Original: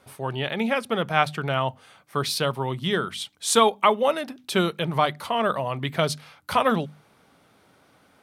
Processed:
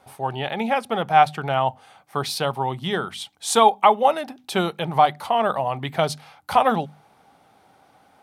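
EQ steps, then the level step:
parametric band 790 Hz +13 dB 0.39 octaves
−1.0 dB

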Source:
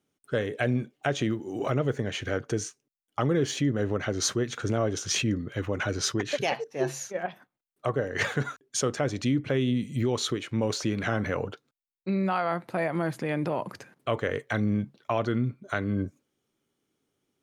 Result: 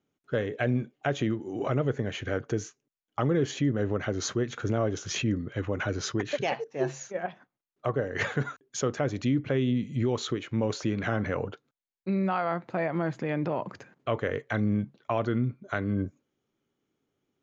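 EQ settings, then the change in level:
low-pass with resonance 6,900 Hz, resonance Q 8.4
high-frequency loss of the air 280 metres
0.0 dB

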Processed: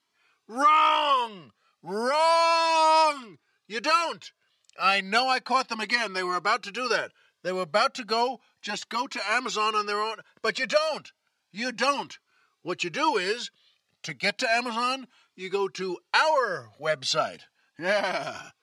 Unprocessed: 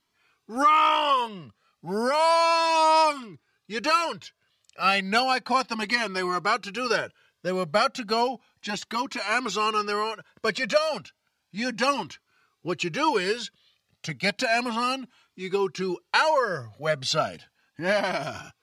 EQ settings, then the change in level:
high-pass filter 330 Hz 6 dB per octave
low-pass filter 11,000 Hz 12 dB per octave
0.0 dB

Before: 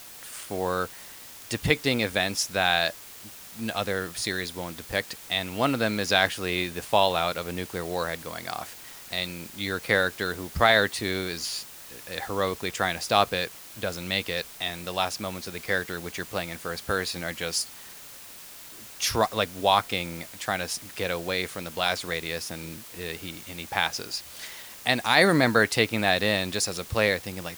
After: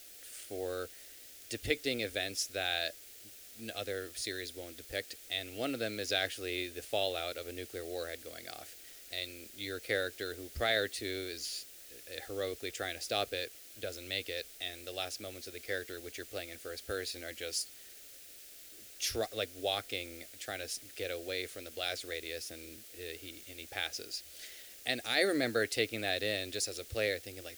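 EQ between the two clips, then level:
phaser with its sweep stopped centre 410 Hz, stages 4
−7.5 dB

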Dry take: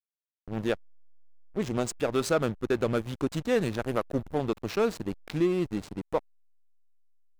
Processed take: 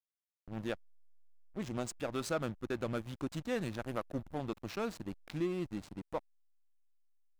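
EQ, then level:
parametric band 430 Hz −6.5 dB 0.34 octaves
−8.0 dB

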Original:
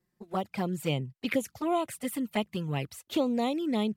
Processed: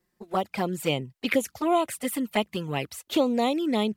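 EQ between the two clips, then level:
parametric band 130 Hz −8 dB 1.5 octaves
+6.0 dB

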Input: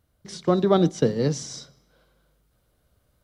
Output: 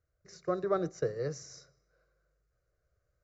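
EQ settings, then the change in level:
Chebyshev low-pass filter 7,400 Hz, order 10
phaser with its sweep stopped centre 890 Hz, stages 6
dynamic equaliser 1,100 Hz, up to +4 dB, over −40 dBFS, Q 1.2
−8.5 dB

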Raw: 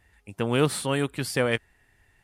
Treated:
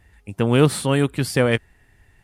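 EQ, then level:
low-shelf EQ 360 Hz +6.5 dB
+3.5 dB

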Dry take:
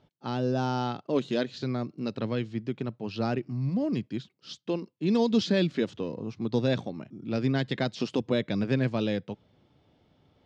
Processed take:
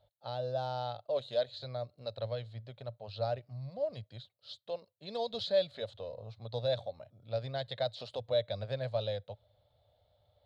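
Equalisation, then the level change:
drawn EQ curve 110 Hz 0 dB, 160 Hz −18 dB, 340 Hz −26 dB, 580 Hz +7 dB, 1,000 Hz −8 dB, 1,500 Hz −8 dB, 2,700 Hz −11 dB, 4,000 Hz +5 dB, 5,700 Hz −15 dB, 11,000 Hz +4 dB
−3.5 dB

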